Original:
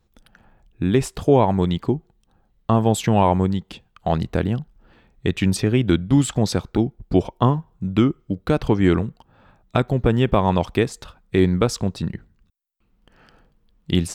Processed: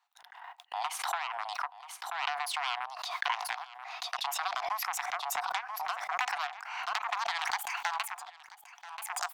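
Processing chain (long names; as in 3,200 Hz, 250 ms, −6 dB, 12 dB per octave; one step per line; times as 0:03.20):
gliding playback speed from 108% → 195%
noise gate −50 dBFS, range −37 dB
high-shelf EQ 2,300 Hz −10 dB
harmonic generator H 3 −6 dB, 7 −19 dB, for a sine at −5.5 dBFS
downward compressor 6 to 1, threshold −26 dBFS, peak gain reduction 14 dB
Chebyshev high-pass with heavy ripple 710 Hz, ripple 3 dB
single-tap delay 984 ms −20 dB
background raised ahead of every attack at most 38 dB per second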